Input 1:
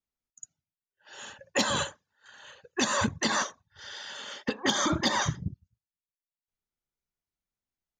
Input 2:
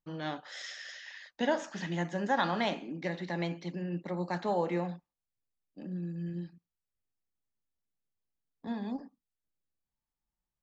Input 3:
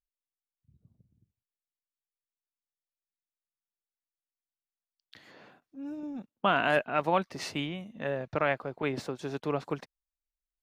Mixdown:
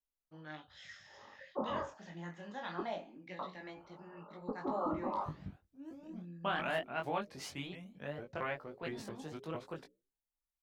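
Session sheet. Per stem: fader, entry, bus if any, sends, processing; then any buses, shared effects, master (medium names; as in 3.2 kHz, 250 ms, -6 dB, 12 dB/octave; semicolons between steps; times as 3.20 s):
-4.0 dB, 0.00 s, muted 2.81–3.39 s, no send, steep low-pass 1.3 kHz 96 dB/octave; peaking EQ 110 Hz -10.5 dB 1.6 oct
-12.5 dB, 0.25 s, no send, sweeping bell 1.1 Hz 630–3700 Hz +11 dB
-7.0 dB, 0.00 s, no send, treble shelf 6.8 kHz +8 dB; hum notches 60/120/180/240/300/360/420/480/540 Hz; vibrato with a chosen wave saw up 4.4 Hz, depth 250 cents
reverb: none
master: bass shelf 73 Hz +6.5 dB; chorus 0.22 Hz, delay 19 ms, depth 4.7 ms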